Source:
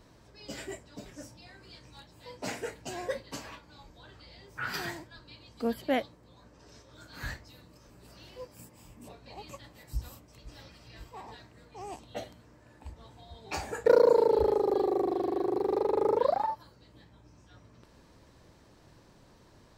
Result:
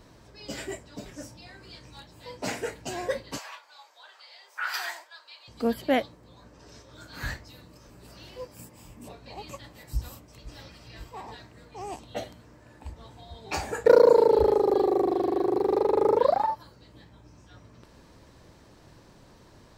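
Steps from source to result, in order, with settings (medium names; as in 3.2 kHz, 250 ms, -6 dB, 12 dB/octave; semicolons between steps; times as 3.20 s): 3.38–5.48 s: high-pass 680 Hz 24 dB/octave; trim +4.5 dB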